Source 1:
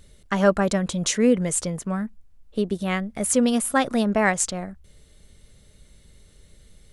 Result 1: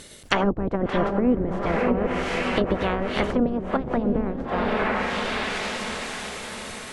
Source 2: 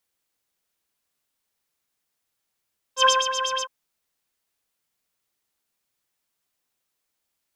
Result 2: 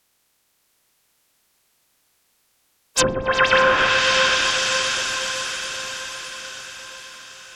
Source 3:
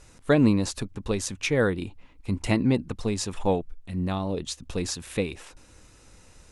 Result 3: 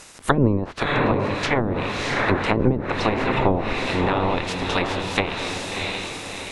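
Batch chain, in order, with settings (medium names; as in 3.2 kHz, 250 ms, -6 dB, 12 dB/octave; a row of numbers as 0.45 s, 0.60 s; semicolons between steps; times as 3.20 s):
spectral peaks clipped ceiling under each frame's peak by 26 dB; echo that smears into a reverb 665 ms, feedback 53%, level -5 dB; low-pass that closes with the level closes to 330 Hz, closed at -17 dBFS; peak normalisation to -3 dBFS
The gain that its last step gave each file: +4.0 dB, +14.5 dB, +6.5 dB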